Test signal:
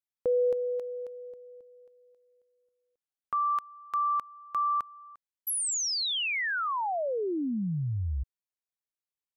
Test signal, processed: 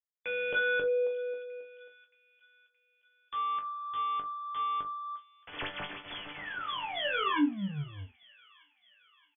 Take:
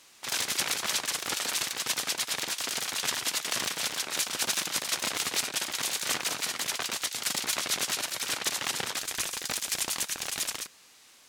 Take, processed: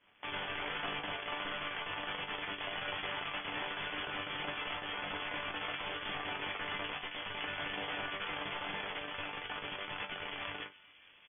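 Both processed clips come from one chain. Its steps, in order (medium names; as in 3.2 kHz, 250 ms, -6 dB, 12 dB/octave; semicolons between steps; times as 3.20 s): high-pass 260 Hz 12 dB/octave; dynamic bell 780 Hz, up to +6 dB, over -41 dBFS, Q 0.74; in parallel at +1.5 dB: compression 16:1, threshold -38 dBFS; on the sum: peak limiter -19.5 dBFS; integer overflow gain 24.5 dB; chord resonator G2 fifth, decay 0.21 s; crossover distortion -58 dBFS; brick-wall FIR low-pass 3.5 kHz; doubling 41 ms -13.5 dB; feedback echo behind a high-pass 622 ms, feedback 55%, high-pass 2.3 kHz, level -17 dB; trim +8.5 dB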